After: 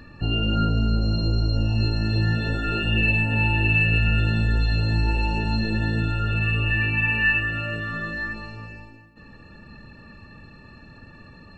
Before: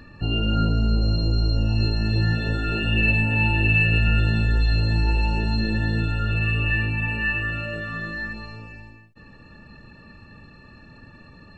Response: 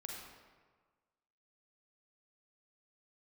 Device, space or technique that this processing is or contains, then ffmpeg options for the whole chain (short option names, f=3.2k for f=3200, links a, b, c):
compressed reverb return: -filter_complex "[0:a]asplit=3[a][b][c];[a]afade=t=out:st=6.8:d=0.02[d];[b]equalizer=f=2.2k:t=o:w=1:g=7.5,afade=t=in:st=6.8:d=0.02,afade=t=out:st=7.39:d=0.02[e];[c]afade=t=in:st=7.39:d=0.02[f];[d][e][f]amix=inputs=3:normalize=0,asplit=2[g][h];[1:a]atrim=start_sample=2205[i];[h][i]afir=irnorm=-1:irlink=0,acompressor=threshold=-25dB:ratio=6,volume=-0.5dB[j];[g][j]amix=inputs=2:normalize=0,volume=-3dB"